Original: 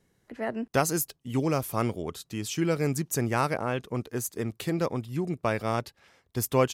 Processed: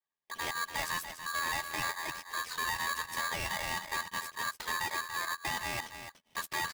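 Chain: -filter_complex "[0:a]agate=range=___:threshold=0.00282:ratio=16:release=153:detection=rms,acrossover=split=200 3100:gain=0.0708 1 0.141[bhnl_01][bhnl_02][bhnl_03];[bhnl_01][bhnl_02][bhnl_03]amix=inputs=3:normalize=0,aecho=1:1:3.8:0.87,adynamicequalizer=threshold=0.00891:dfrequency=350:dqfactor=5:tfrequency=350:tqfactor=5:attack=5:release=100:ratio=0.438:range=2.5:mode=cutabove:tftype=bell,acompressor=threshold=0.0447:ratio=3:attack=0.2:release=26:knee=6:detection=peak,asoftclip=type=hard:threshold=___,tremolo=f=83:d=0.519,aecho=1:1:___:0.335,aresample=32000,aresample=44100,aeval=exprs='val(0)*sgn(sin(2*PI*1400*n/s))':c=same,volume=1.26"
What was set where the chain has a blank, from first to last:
0.0562, 0.0282, 289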